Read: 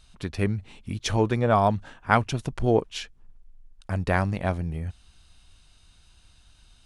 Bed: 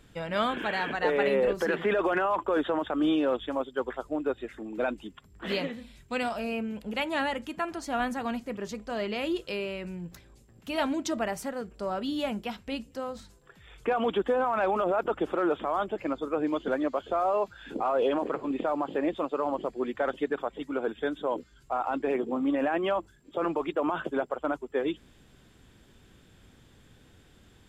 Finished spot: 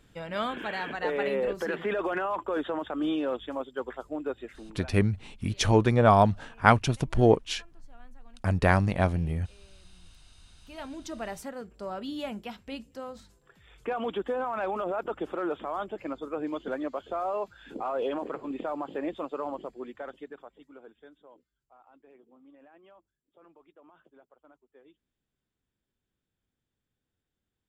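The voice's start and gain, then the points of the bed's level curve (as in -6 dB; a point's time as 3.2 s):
4.55 s, +1.5 dB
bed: 4.56 s -3.5 dB
5.1 s -27 dB
9.9 s -27 dB
11.34 s -4.5 dB
19.44 s -4.5 dB
21.64 s -29 dB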